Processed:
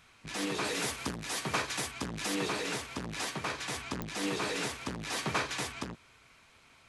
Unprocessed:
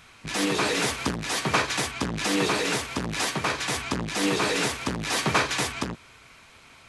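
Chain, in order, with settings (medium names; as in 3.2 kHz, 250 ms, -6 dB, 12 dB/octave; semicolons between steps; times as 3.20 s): 0.64–2.35 s: treble shelf 9.6 kHz +8.5 dB; clicks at 4.02 s, -11 dBFS; trim -9 dB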